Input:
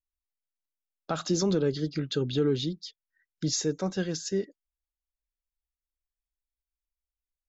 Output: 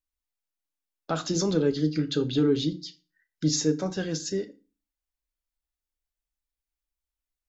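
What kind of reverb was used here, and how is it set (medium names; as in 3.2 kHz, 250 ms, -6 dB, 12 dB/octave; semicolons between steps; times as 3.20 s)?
FDN reverb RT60 0.32 s, low-frequency decay 1.35×, high-frequency decay 0.9×, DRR 7 dB; trim +1 dB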